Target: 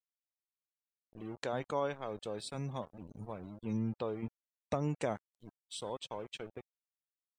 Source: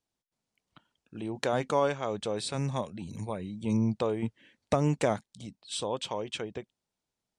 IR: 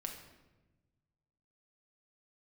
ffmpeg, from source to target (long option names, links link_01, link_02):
-af "aeval=exprs='val(0)*gte(abs(val(0)),0.0119)':channel_layout=same,afftdn=noise_reduction=25:noise_floor=-46,volume=-8dB"